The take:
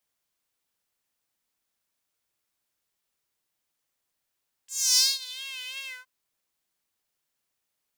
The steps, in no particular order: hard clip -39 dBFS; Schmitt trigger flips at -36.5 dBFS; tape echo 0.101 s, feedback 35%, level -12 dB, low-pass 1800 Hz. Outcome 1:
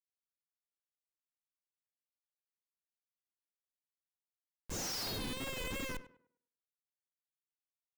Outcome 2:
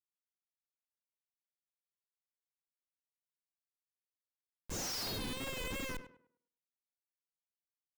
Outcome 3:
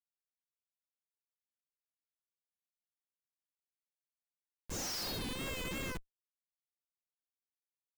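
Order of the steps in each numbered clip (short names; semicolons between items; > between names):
Schmitt trigger > hard clip > tape echo; Schmitt trigger > tape echo > hard clip; tape echo > Schmitt trigger > hard clip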